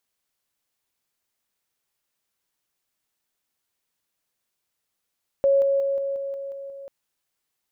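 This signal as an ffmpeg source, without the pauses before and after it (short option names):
-f lavfi -i "aevalsrc='pow(10,(-15-3*floor(t/0.18))/20)*sin(2*PI*552*t)':d=1.44:s=44100"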